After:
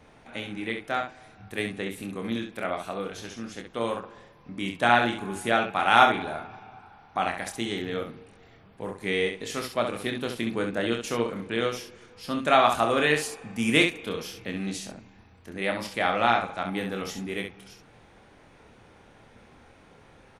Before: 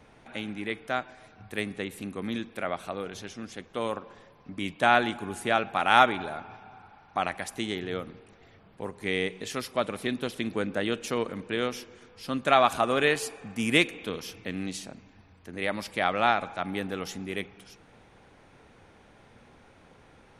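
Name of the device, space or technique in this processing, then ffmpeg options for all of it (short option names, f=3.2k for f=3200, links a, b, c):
slapback doubling: -filter_complex "[0:a]asplit=3[a][b][c];[b]adelay=26,volume=-5.5dB[d];[c]adelay=67,volume=-6.5dB[e];[a][d][e]amix=inputs=3:normalize=0"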